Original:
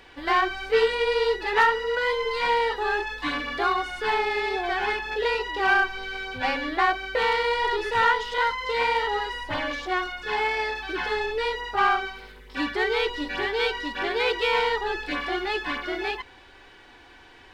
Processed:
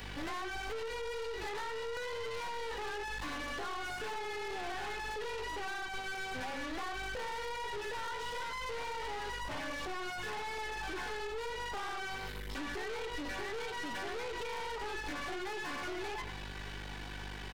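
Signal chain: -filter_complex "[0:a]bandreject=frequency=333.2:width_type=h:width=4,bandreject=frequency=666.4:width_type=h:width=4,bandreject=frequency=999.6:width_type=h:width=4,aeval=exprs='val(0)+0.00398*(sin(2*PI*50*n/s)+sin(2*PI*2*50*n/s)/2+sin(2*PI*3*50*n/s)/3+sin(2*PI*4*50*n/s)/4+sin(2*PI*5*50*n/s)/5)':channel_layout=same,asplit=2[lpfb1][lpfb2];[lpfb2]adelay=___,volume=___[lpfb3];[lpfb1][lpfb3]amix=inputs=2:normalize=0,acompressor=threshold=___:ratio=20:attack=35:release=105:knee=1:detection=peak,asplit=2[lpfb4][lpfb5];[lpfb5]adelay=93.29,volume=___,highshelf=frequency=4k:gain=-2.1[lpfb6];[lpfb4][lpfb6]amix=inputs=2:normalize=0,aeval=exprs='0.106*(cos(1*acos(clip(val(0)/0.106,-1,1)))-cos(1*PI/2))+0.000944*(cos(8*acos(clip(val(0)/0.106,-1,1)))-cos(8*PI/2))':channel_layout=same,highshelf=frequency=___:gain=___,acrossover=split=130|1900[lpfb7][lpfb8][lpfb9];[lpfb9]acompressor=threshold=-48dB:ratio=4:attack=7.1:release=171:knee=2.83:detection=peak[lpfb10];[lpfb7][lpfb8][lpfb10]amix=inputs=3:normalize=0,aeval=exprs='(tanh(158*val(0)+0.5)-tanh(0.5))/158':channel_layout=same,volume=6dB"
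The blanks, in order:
22, -13dB, -36dB, -15dB, 5.7k, 9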